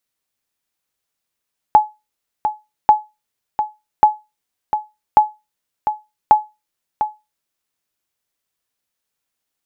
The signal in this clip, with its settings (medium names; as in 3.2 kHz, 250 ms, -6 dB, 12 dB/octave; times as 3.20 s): sonar ping 851 Hz, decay 0.23 s, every 1.14 s, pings 5, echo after 0.70 s, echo -9 dB -1 dBFS